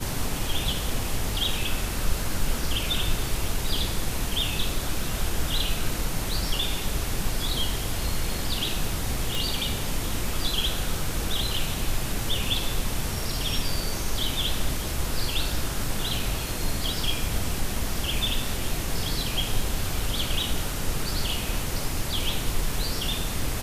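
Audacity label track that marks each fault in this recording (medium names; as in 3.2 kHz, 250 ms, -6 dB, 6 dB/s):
9.350000	9.350000	pop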